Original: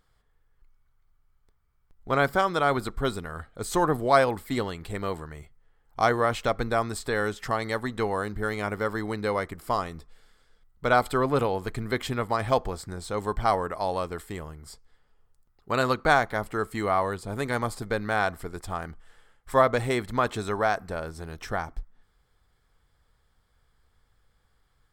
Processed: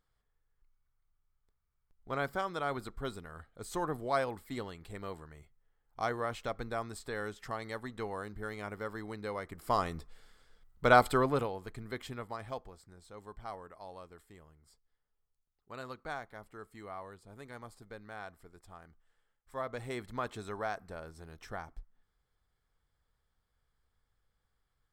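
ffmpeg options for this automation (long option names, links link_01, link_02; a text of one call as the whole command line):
ffmpeg -i in.wav -af "volume=7dB,afade=type=in:start_time=9.43:duration=0.46:silence=0.298538,afade=type=out:start_time=11.02:duration=0.51:silence=0.266073,afade=type=out:start_time=12.06:duration=0.65:silence=0.421697,afade=type=in:start_time=19.54:duration=0.48:silence=0.398107" out.wav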